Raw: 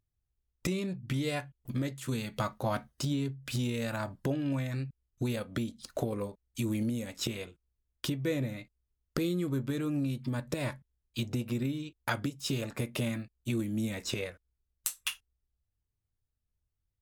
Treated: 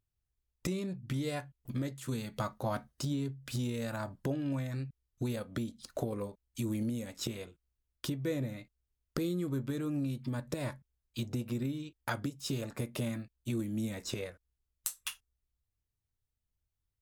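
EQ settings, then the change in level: dynamic EQ 2600 Hz, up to -5 dB, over -51 dBFS, Q 1.4; -2.5 dB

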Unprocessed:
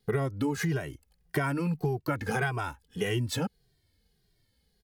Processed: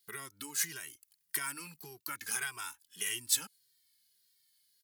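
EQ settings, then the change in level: differentiator; dynamic EQ 8800 Hz, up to +5 dB, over -57 dBFS, Q 1.2; band shelf 600 Hz -10 dB 1 oct; +6.5 dB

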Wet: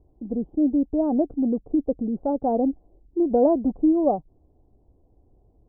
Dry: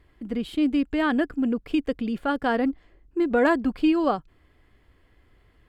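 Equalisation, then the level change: elliptic low-pass 800 Hz, stop band 60 dB; dynamic EQ 590 Hz, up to +5 dB, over -38 dBFS, Q 4.2; +1.5 dB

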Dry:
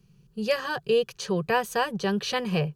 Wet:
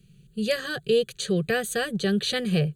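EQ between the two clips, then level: dynamic EQ 2700 Hz, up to -7 dB, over -46 dBFS, Q 2.5; band shelf 5700 Hz +11 dB; fixed phaser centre 2300 Hz, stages 4; +4.0 dB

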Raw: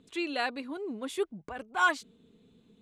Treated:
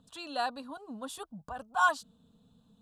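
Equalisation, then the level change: bell 6500 Hz -3 dB 0.46 oct; fixed phaser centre 900 Hz, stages 4; +2.5 dB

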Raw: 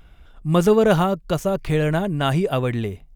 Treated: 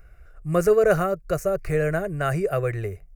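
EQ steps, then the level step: fixed phaser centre 910 Hz, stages 6; 0.0 dB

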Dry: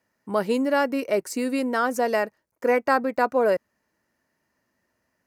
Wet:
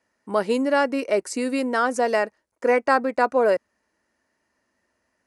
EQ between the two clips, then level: steep low-pass 11000 Hz 96 dB/oct; bell 140 Hz -10 dB 0.77 oct; +2.0 dB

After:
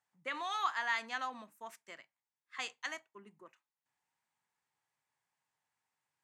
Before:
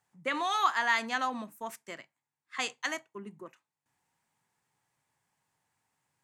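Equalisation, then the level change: low shelf 470 Hz -10.5 dB; high shelf 8600 Hz -9.5 dB; -5.5 dB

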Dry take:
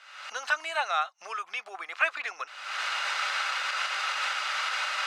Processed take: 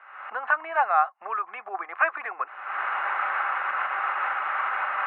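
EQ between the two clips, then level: air absorption 480 m; speaker cabinet 190–2300 Hz, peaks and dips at 220 Hz +6 dB, 360 Hz +7 dB, 780 Hz +8 dB, 1100 Hz +8 dB, 1700 Hz +4 dB; +3.5 dB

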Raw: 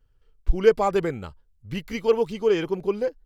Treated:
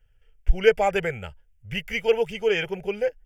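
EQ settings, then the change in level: bell 3100 Hz +11 dB 1.5 oct; fixed phaser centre 1100 Hz, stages 6; +2.0 dB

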